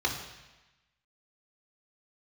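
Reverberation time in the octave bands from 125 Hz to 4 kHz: 1.2, 1.1, 1.0, 1.1, 1.2, 1.1 s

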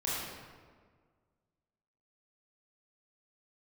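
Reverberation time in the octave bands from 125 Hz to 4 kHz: 1.9, 1.9, 1.8, 1.6, 1.3, 0.95 s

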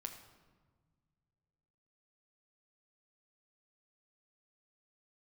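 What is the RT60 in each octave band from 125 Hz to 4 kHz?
2.8, 2.3, 1.6, 1.4, 1.1, 0.90 s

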